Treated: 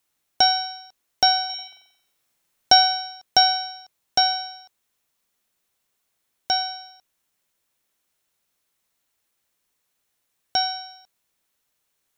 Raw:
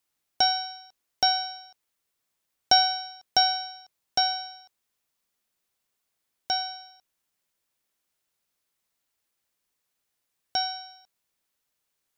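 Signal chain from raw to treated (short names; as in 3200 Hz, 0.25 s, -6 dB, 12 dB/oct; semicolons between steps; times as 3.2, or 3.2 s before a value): notch 4800 Hz, Q 20; 1.45–2.72 flutter echo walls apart 7.7 m, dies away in 0.73 s; gain +5 dB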